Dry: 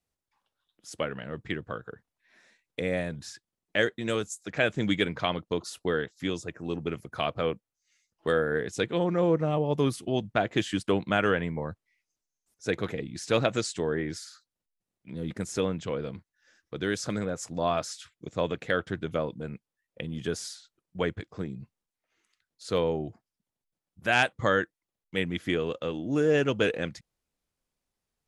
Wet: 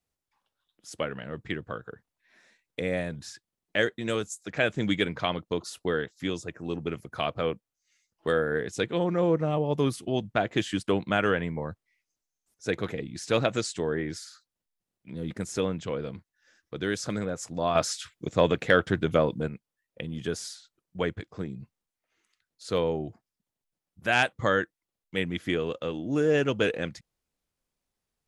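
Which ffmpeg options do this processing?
-filter_complex "[0:a]asettb=1/sr,asplit=3[a][b][c];[a]atrim=end=17.754[d];[b]atrim=start=17.75:end=19.48,asetpts=PTS-STARTPTS,afade=t=in:d=0.004:c=qsin,afade=t=out:st=1.726:d=0.004:c=qsin,acontrast=74[e];[c]atrim=start=19.476[f];[d][e]acrossfade=d=0.004:c1=hsin:c2=qsin[g];[g][f]acrossfade=d=0.004:c1=qsin:c2=hsin"

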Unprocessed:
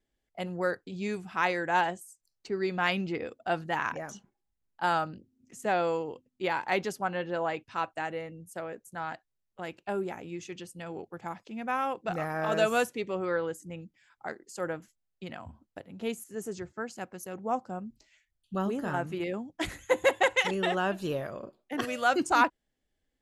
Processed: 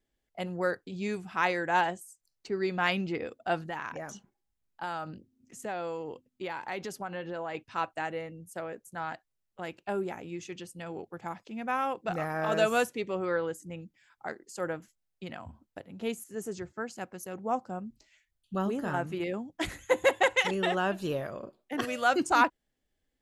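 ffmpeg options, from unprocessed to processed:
-filter_complex "[0:a]asettb=1/sr,asplit=3[a][b][c];[a]atrim=end=3.594[d];[b]atrim=start=3.59:end=7.55,asetpts=PTS-STARTPTS,afade=t=in:d=0.004:c=qsin,afade=t=out:st=3.956:d=0.004:c=qsin,acompressor=threshold=-34dB:ratio=3:attack=3.2:release=140:knee=1:detection=peak[e];[c]atrim=start=7.546[f];[d][e]acrossfade=d=0.004:c1=hsin:c2=qsin[g];[g][f]acrossfade=d=0.004:c1=qsin:c2=hsin"

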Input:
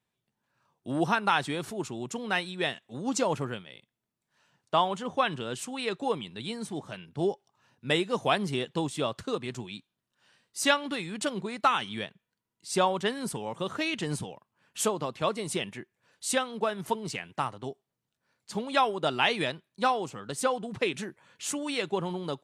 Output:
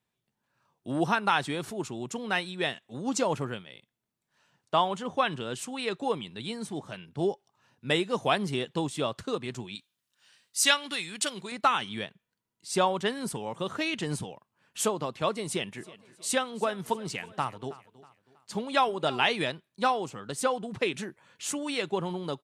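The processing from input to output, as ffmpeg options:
-filter_complex "[0:a]asettb=1/sr,asplit=3[a][b][c];[a]atrim=end=9.754[d];[b]atrim=start=9.75:end=11.52,asetpts=PTS-STARTPTS,afade=t=in:d=0.004:c=qsin,afade=t=out:st=1.766:d=0.004:c=qsin,tiltshelf=f=1.5k:g=-7.5[e];[c]atrim=start=11.516[f];[d][e]acrossfade=d=0.004:c1=hsin:c2=qsin[g];[g][f]acrossfade=d=0.004:c1=qsin:c2=hsin,asplit=3[h][i][j];[h]afade=t=out:st=15.76:d=0.02[k];[i]aecho=1:1:321|642|963:0.112|0.0449|0.018,afade=t=in:st=15.76:d=0.02,afade=t=out:st=19.33:d=0.02[l];[j]afade=t=in:st=19.33:d=0.02[m];[k][l][m]amix=inputs=3:normalize=0"

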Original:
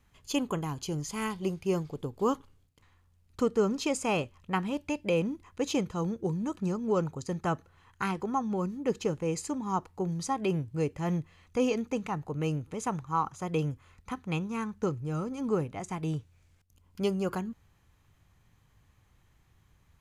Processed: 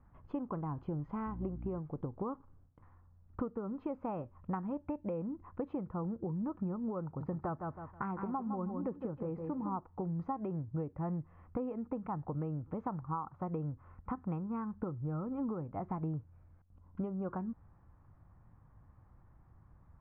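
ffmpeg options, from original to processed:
-filter_complex "[0:a]asettb=1/sr,asplit=3[a][b][c];[a]atrim=end=1.264[d];[b]atrim=start=1.26:end=1.79,asetpts=PTS-STARTPTS,afade=t=in:d=0.004:c=qsin,afade=t=out:st=0.526:d=0.004:c=qsin,aeval=exprs='val(0)+0.01*(sin(2*PI*60*n/s)+sin(2*PI*2*60*n/s)/2+sin(2*PI*3*60*n/s)/3+sin(2*PI*4*60*n/s)/4+sin(2*PI*5*60*n/s)/5)':c=same[e];[c]atrim=start=1.786[f];[d][e]acrossfade=d=0.004:c1=hsin:c2=qsin[g];[g][f]acrossfade=d=0.004:c1=qsin:c2=hsin,asettb=1/sr,asplit=3[h][i][j];[h]atrim=end=7.044[k];[i]atrim=start=7.04:end=9.78,asetpts=PTS-STARTPTS,afade=t=in:d=0.004:c=qsin,afade=t=out:st=2.736:d=0.004:c=qsin,aecho=1:1:160|320|480:0.398|0.0916|0.0211,atrim=end_sample=120834[l];[j]atrim=start=9.776[m];[k][l]acrossfade=d=0.004:c1=hsin:c2=qsin[n];[n][m]acrossfade=d=0.004:c1=qsin:c2=hsin,acompressor=threshold=-37dB:ratio=12,lowpass=f=1.3k:w=0.5412,lowpass=f=1.3k:w=1.3066,equalizer=f=420:w=5.4:g=-7,volume=4dB"

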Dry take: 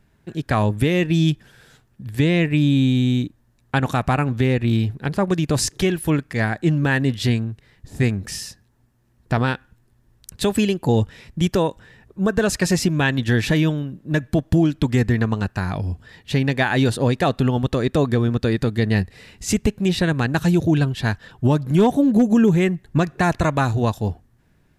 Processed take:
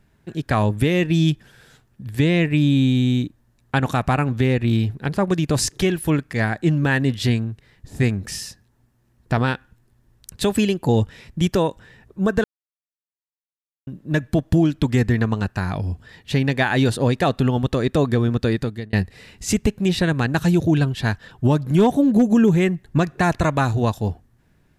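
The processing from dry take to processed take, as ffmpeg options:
-filter_complex "[0:a]asplit=4[a][b][c][d];[a]atrim=end=12.44,asetpts=PTS-STARTPTS,afade=t=out:st=12.436:d=0.004:c=hsin[e];[b]atrim=start=12.44:end=13.87,asetpts=PTS-STARTPTS,volume=0[f];[c]atrim=start=13.87:end=18.93,asetpts=PTS-STARTPTS,afade=t=in:d=0.004:c=hsin,afade=t=out:st=4.64:d=0.42[g];[d]atrim=start=18.93,asetpts=PTS-STARTPTS,afade=t=in:d=0.004:c=hsin[h];[e][f][g][h]concat=n=4:v=0:a=1"

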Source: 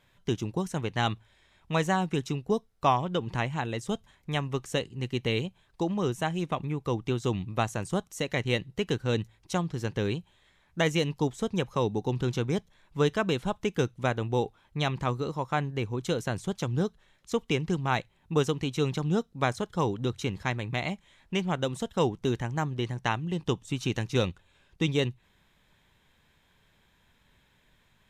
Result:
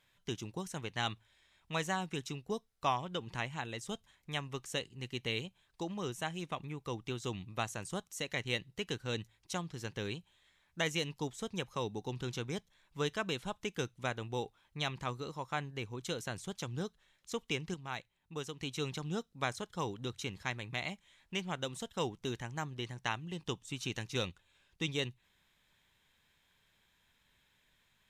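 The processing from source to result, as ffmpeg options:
-filter_complex "[0:a]asplit=3[a][b][c];[a]atrim=end=17.742[d];[b]atrim=start=17.738:end=18.602,asetpts=PTS-STARTPTS,volume=-6dB[e];[c]atrim=start=18.598[f];[d][e]acrossfade=d=0.004:c1=hsin:c2=hsin[g];[g][f]acrossfade=d=0.004:c1=hsin:c2=hsin,tiltshelf=f=1.3k:g=-4.5,volume=-7dB"

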